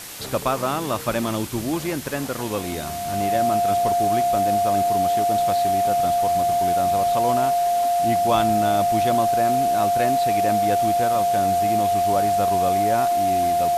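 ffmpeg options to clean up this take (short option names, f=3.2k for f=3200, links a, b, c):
-af "bandreject=f=700:w=30,afwtdn=0.018"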